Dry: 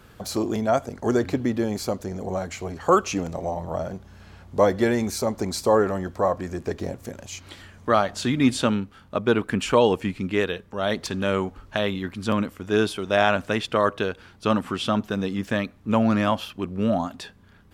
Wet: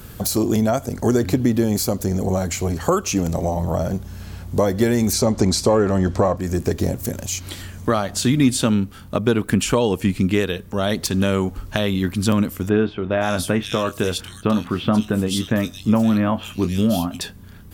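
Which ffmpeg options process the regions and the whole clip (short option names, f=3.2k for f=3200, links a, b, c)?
-filter_complex "[0:a]asettb=1/sr,asplit=3[a][b][c];[a]atrim=end=5.134[d];[b]atrim=start=5.13:end=6.37,asetpts=PTS-STARTPTS,afade=t=in:d=0.004:c=qsin,afade=t=out:st=1.236:d=0.004:c=qsin,lowpass=6.3k,acontrast=33[e];[c]atrim=start=6.366[f];[d][e]acrossfade=d=0.004:c1=hsin:c2=qsin[g];[g][f]acrossfade=d=0.004:c1=qsin:c2=hsin,asettb=1/sr,asplit=3[h][i][j];[h]atrim=end=12.694[k];[i]atrim=start=12.69:end=17.21,asetpts=PTS-STARTPTS,afade=t=in:d=0.004:c=qsin,afade=t=out:st=4.516:d=0.004:c=qsin,tremolo=f=1.3:d=0.38,asplit=2[l][m];[m]adelay=23,volume=-11dB[n];[l][n]amix=inputs=2:normalize=0,atrim=end_sample=199332,acrossover=split=2800[o][p];[p]adelay=520[q];[o][q]amix=inputs=2:normalize=0,atrim=end_sample=199332[r];[j]atrim=start=17.206[s];[k][r]acrossfade=d=0.004:c1=hsin:c2=qsin[t];[t][s]acrossfade=d=0.004:c1=qsin:c2=hsin,aemphasis=mode=production:type=75fm,acompressor=threshold=-26dB:ratio=2.5,lowshelf=f=360:g=11,volume=4dB"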